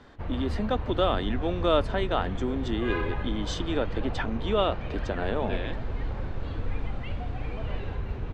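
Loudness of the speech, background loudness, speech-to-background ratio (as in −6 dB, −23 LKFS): −30.0 LKFS, −34.5 LKFS, 4.5 dB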